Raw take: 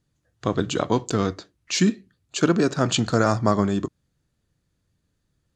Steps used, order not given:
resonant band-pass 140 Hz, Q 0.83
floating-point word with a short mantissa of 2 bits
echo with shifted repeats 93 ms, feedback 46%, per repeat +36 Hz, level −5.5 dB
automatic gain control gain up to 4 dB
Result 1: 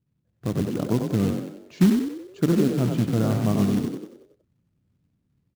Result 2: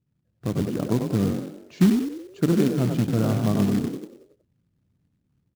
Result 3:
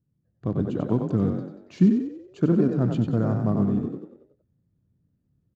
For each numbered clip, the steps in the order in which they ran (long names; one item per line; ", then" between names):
automatic gain control, then resonant band-pass, then floating-point word with a short mantissa, then echo with shifted repeats
automatic gain control, then resonant band-pass, then echo with shifted repeats, then floating-point word with a short mantissa
echo with shifted repeats, then floating-point word with a short mantissa, then automatic gain control, then resonant band-pass